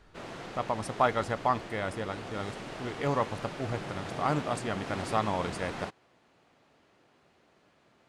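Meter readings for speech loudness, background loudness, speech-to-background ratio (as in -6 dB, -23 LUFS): -33.0 LUFS, -40.5 LUFS, 7.5 dB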